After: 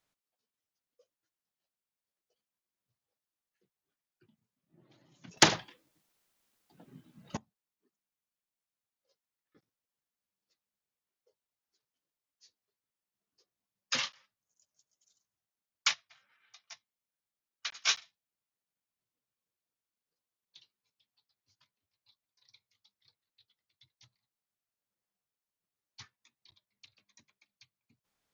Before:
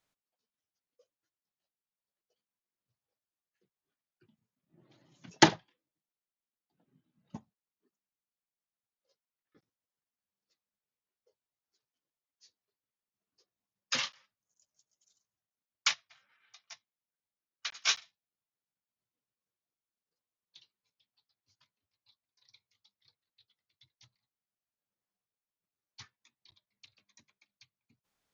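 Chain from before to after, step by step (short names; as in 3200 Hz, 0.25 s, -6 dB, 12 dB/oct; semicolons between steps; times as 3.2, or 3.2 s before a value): 5.37–7.37 spectral compressor 2:1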